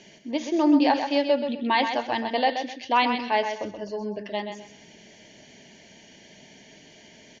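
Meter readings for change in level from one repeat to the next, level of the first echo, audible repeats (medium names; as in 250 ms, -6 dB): -11.5 dB, -7.5 dB, 3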